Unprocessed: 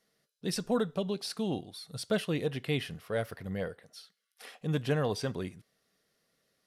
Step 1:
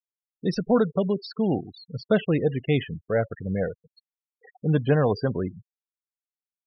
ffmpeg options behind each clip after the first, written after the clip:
-af "highshelf=f=3.1k:g=-11,afftfilt=real='re*gte(hypot(re,im),0.0126)':imag='im*gte(hypot(re,im),0.0126)':win_size=1024:overlap=0.75,volume=9dB"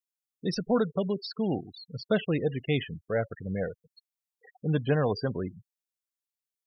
-af "highshelf=f=3k:g=8.5,volume=-5dB"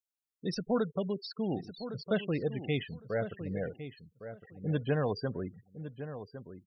-filter_complex "[0:a]asplit=2[a][b];[b]adelay=1108,lowpass=f=2k:p=1,volume=-11dB,asplit=2[c][d];[d]adelay=1108,lowpass=f=2k:p=1,volume=0.17[e];[a][c][e]amix=inputs=3:normalize=0,volume=-4.5dB"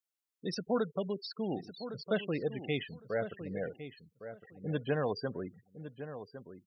-af "highpass=f=220:p=1"

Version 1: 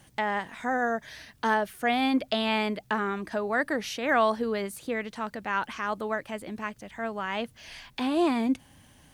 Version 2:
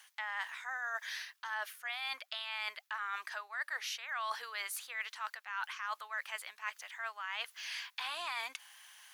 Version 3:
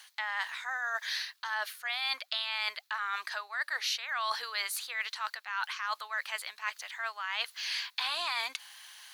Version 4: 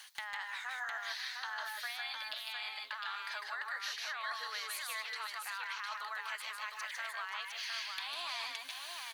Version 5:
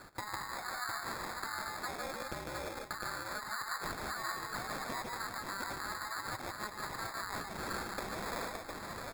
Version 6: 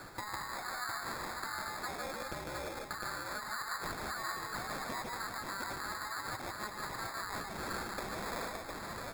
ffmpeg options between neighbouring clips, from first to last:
-af "highpass=f=1.1k:w=0.5412,highpass=f=1.1k:w=1.3066,equalizer=f=8.5k:t=o:w=0.24:g=-5.5,areverse,acompressor=threshold=-40dB:ratio=12,areverse,volume=4.5dB"
-af "equalizer=f=4.2k:t=o:w=0.4:g=9,volume=4.5dB"
-filter_complex "[0:a]acompressor=threshold=-40dB:ratio=12,aeval=exprs='0.0501*(abs(mod(val(0)/0.0501+3,4)-2)-1)':c=same,asplit=2[a][b];[b]aecho=0:1:149|156|178|527|707:0.501|0.531|0.141|0.2|0.596[c];[a][c]amix=inputs=2:normalize=0,volume=1dB"
-af "acrusher=samples=15:mix=1:aa=0.000001,volume=1dB"
-af "aeval=exprs='val(0)+0.5*0.00473*sgn(val(0))':c=same,volume=-1.5dB"

